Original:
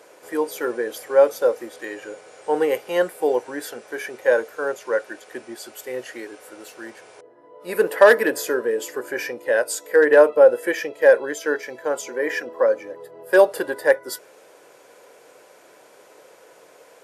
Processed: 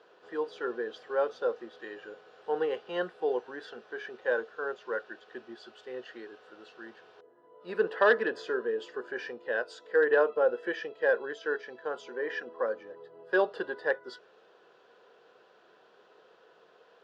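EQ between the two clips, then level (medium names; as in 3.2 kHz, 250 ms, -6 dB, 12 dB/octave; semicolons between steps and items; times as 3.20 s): cabinet simulation 110–3800 Hz, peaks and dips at 130 Hz -7 dB, 290 Hz -10 dB, 570 Hz -10 dB, 900 Hz -6 dB, 2.1 kHz -9 dB; peaking EQ 2.3 kHz -7.5 dB 0.26 oct; -5.0 dB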